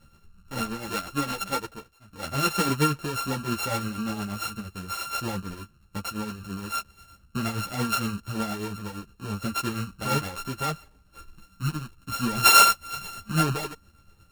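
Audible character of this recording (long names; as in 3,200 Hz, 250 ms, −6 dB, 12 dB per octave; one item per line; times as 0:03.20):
a buzz of ramps at a fixed pitch in blocks of 32 samples
tremolo triangle 8.6 Hz, depth 60%
a shimmering, thickened sound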